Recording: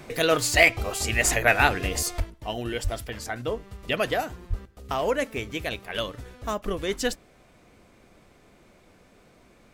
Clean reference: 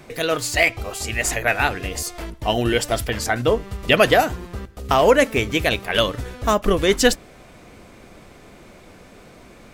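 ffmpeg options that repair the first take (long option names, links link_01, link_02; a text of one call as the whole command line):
ffmpeg -i in.wav -filter_complex "[0:a]asplit=3[link_01][link_02][link_03];[link_01]afade=type=out:start_time=2.17:duration=0.02[link_04];[link_02]highpass=frequency=140:width=0.5412,highpass=frequency=140:width=1.3066,afade=type=in:start_time=2.17:duration=0.02,afade=type=out:start_time=2.29:duration=0.02[link_05];[link_03]afade=type=in:start_time=2.29:duration=0.02[link_06];[link_04][link_05][link_06]amix=inputs=3:normalize=0,asplit=3[link_07][link_08][link_09];[link_07]afade=type=out:start_time=2.83:duration=0.02[link_10];[link_08]highpass=frequency=140:width=0.5412,highpass=frequency=140:width=1.3066,afade=type=in:start_time=2.83:duration=0.02,afade=type=out:start_time=2.95:duration=0.02[link_11];[link_09]afade=type=in:start_time=2.95:duration=0.02[link_12];[link_10][link_11][link_12]amix=inputs=3:normalize=0,asplit=3[link_13][link_14][link_15];[link_13]afade=type=out:start_time=4.49:duration=0.02[link_16];[link_14]highpass=frequency=140:width=0.5412,highpass=frequency=140:width=1.3066,afade=type=in:start_time=4.49:duration=0.02,afade=type=out:start_time=4.61:duration=0.02[link_17];[link_15]afade=type=in:start_time=4.61:duration=0.02[link_18];[link_16][link_17][link_18]amix=inputs=3:normalize=0,asetnsamples=nb_out_samples=441:pad=0,asendcmd='2.2 volume volume 11dB',volume=0dB" out.wav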